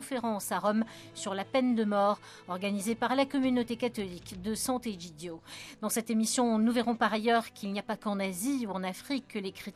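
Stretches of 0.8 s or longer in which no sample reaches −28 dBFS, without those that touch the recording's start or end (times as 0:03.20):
0:04.91–0:05.84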